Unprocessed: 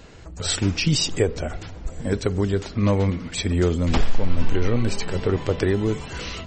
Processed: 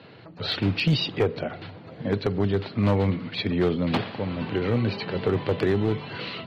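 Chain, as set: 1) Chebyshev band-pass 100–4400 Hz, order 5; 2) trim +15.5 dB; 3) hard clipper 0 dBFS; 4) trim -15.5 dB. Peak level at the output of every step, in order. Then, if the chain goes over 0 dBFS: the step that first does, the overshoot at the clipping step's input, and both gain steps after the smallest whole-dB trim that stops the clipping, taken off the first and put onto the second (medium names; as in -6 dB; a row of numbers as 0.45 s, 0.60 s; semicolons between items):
-7.0 dBFS, +8.5 dBFS, 0.0 dBFS, -15.5 dBFS; step 2, 8.5 dB; step 2 +6.5 dB, step 4 -6.5 dB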